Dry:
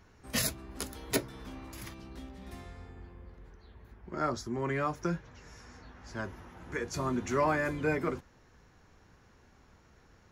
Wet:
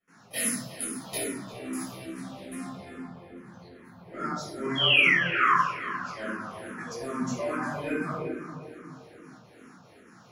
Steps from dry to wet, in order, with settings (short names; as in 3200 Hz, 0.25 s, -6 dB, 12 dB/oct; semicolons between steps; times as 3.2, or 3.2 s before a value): HPF 150 Hz 24 dB/oct; bell 10000 Hz +15 dB 0.21 oct; compressor 2:1, threshold -44 dBFS, peak gain reduction 13 dB; step gate ".xx.xxxx" 197 bpm -24 dB; painted sound fall, 4.75–5.54, 990–3400 Hz -32 dBFS; wow and flutter 17 cents; on a send: darkening echo 0.349 s, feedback 56%, low-pass 3000 Hz, level -10.5 dB; on the sum: shoebox room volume 640 m³, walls mixed, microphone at 6.3 m; endless phaser -2.4 Hz